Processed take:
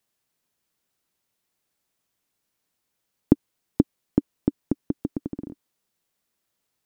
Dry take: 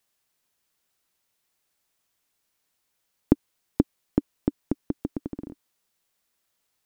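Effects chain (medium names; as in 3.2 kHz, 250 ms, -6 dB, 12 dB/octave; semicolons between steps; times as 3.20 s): peaking EQ 190 Hz +6 dB 2.9 oct; trim -3 dB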